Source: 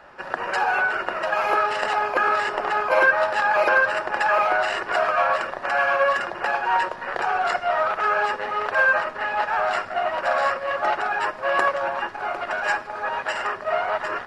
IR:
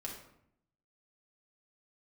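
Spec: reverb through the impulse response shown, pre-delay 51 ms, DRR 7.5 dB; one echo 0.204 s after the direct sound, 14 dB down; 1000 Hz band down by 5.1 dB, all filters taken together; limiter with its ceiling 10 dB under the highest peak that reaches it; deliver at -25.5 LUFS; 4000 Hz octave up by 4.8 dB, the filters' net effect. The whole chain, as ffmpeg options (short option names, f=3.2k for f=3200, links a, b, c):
-filter_complex "[0:a]equalizer=f=1k:t=o:g=-7.5,equalizer=f=4k:t=o:g=8,alimiter=limit=-18.5dB:level=0:latency=1,aecho=1:1:204:0.2,asplit=2[a][b];[1:a]atrim=start_sample=2205,adelay=51[c];[b][c]afir=irnorm=-1:irlink=0,volume=-6.5dB[d];[a][d]amix=inputs=2:normalize=0,volume=1.5dB"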